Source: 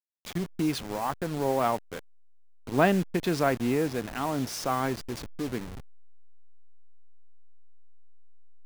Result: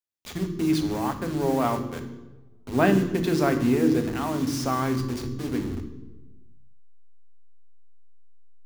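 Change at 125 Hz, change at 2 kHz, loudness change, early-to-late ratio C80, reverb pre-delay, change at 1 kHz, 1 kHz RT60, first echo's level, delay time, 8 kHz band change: +5.0 dB, +1.0 dB, +3.5 dB, 11.0 dB, 3 ms, +0.5 dB, 1.0 s, no echo, no echo, +1.5 dB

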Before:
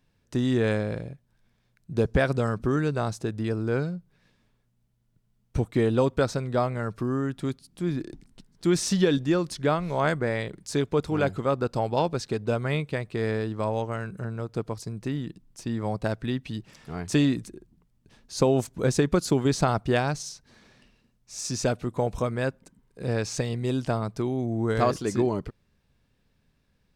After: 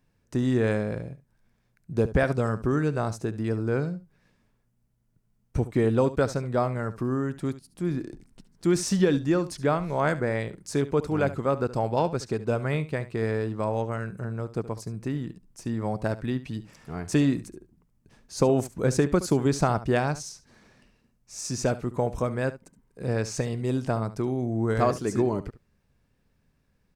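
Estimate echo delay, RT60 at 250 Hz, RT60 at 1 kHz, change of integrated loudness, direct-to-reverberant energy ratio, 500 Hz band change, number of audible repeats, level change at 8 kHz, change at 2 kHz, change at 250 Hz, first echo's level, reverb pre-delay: 71 ms, no reverb, no reverb, 0.0 dB, no reverb, 0.0 dB, 1, -1.0 dB, -1.0 dB, 0.0 dB, -15.5 dB, no reverb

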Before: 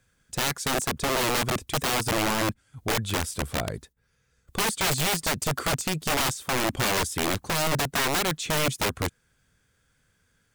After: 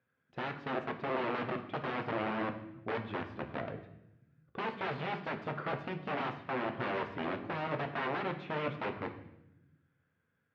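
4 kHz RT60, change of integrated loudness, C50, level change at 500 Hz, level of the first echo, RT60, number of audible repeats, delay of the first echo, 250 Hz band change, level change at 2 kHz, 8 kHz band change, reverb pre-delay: 0.75 s, -11.0 dB, 10.5 dB, -7.0 dB, no echo, 0.85 s, no echo, no echo, -8.0 dB, -10.5 dB, under -40 dB, 8 ms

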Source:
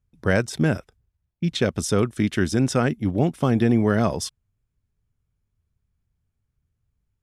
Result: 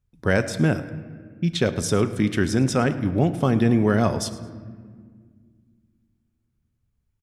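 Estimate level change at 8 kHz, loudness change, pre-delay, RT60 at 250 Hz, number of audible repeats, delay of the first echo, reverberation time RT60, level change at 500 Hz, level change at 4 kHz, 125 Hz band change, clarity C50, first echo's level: 0.0 dB, +0.5 dB, 5 ms, 3.0 s, 1, 108 ms, 1.8 s, +0.5 dB, 0.0 dB, +1.0 dB, 12.0 dB, -18.0 dB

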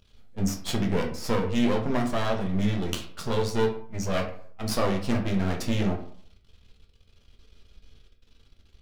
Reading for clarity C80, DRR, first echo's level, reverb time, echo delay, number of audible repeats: 12.5 dB, 1.5 dB, no echo, 0.55 s, no echo, no echo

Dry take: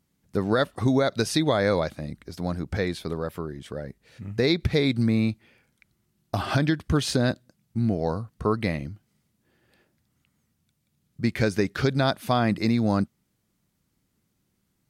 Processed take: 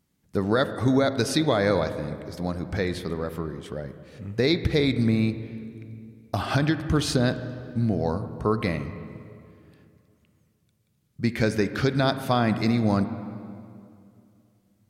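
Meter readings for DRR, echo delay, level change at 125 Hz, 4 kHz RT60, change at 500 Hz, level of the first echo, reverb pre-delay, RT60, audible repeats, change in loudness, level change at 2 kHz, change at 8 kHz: 10.5 dB, no echo, +0.5 dB, 1.9 s, +0.5 dB, no echo, 33 ms, 2.4 s, no echo, 0.0 dB, +0.5 dB, 0.0 dB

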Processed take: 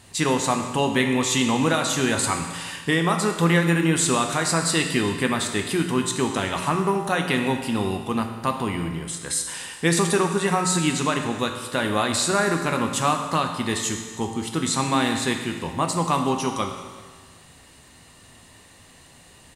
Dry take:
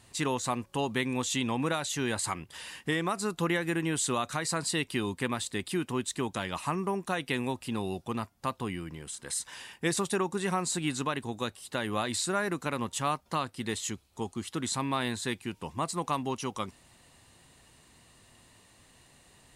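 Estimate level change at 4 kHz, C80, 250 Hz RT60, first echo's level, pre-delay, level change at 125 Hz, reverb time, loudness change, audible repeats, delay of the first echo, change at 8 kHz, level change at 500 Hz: +9.0 dB, 7.5 dB, 1.4 s, -22.0 dB, 6 ms, +10.0 dB, 1.5 s, +9.0 dB, 1, 380 ms, +9.0 dB, +9.0 dB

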